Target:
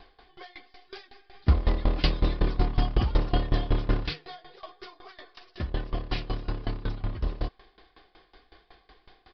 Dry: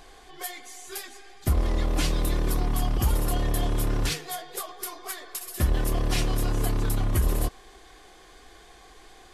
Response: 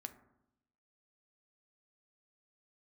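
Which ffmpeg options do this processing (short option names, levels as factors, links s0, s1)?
-filter_complex "[0:a]asplit=3[s0][s1][s2];[s0]afade=t=out:st=1.33:d=0.02[s3];[s1]acontrast=70,afade=t=in:st=1.33:d=0.02,afade=t=out:st=4.05:d=0.02[s4];[s2]afade=t=in:st=4.05:d=0.02[s5];[s3][s4][s5]amix=inputs=3:normalize=0,aresample=11025,aresample=44100,aeval=exprs='val(0)*pow(10,-20*if(lt(mod(5.4*n/s,1),2*abs(5.4)/1000),1-mod(5.4*n/s,1)/(2*abs(5.4)/1000),(mod(5.4*n/s,1)-2*abs(5.4)/1000)/(1-2*abs(5.4)/1000))/20)':c=same"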